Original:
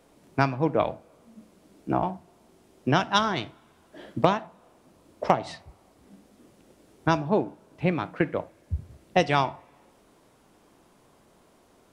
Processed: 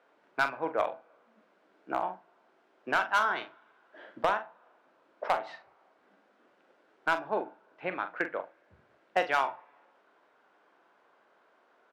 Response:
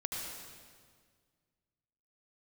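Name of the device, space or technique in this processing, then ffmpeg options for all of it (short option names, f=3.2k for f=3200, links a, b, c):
megaphone: -filter_complex "[0:a]highpass=540,lowpass=2.6k,equalizer=f=1.5k:t=o:w=0.38:g=8,asoftclip=type=hard:threshold=-14.5dB,asplit=2[a][b];[b]adelay=43,volume=-10dB[c];[a][c]amix=inputs=2:normalize=0,volume=-3.5dB"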